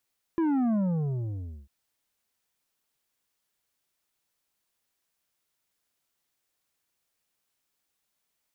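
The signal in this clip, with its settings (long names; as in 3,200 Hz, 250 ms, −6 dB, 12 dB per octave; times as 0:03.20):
bass drop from 340 Hz, over 1.30 s, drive 8 dB, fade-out 0.95 s, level −23.5 dB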